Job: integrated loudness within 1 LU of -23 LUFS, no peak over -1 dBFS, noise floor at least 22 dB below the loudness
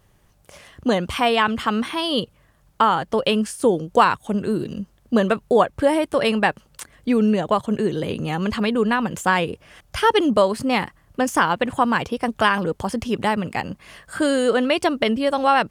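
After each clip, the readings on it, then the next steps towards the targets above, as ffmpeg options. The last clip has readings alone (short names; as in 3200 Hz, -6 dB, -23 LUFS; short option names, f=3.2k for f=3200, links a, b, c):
loudness -21.0 LUFS; peak -2.5 dBFS; loudness target -23.0 LUFS
-> -af "volume=-2dB"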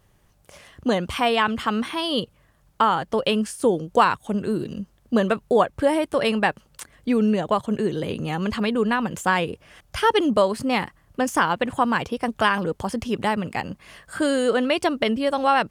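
loudness -23.0 LUFS; peak -4.5 dBFS; noise floor -60 dBFS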